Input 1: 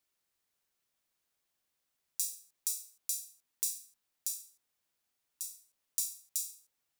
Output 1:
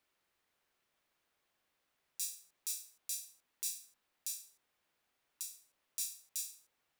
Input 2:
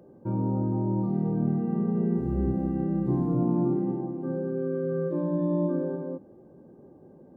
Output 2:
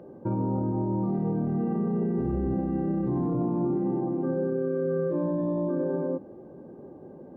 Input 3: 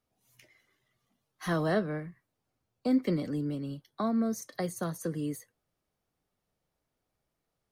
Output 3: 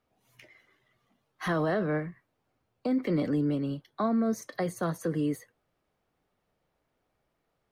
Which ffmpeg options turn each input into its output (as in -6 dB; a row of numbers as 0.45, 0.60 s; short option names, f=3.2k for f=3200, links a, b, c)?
-af "bass=f=250:g=-4,treble=f=4k:g=-11,alimiter=level_in=4dB:limit=-24dB:level=0:latency=1:release=32,volume=-4dB,volume=7.5dB"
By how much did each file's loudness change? -4.5, -0.5, +2.0 LU